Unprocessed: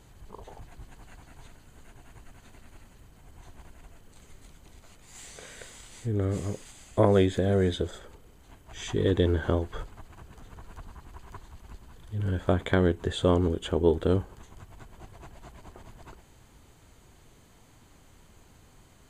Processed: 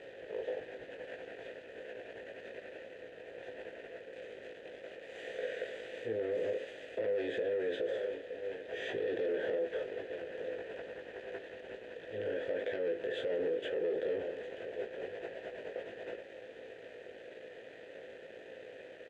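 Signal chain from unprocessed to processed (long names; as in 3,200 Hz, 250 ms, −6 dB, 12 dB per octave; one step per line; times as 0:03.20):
compressor on every frequency bin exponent 0.6
bass and treble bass −4 dB, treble −5 dB
double-tracking delay 18 ms −3 dB
on a send: single-tap delay 915 ms −18.5 dB
on the sum: leveller curve on the samples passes 3
formant filter e
brickwall limiter −20.5 dBFS, peak gain reduction 10.5 dB
notch filter 570 Hz, Q 12
level −6 dB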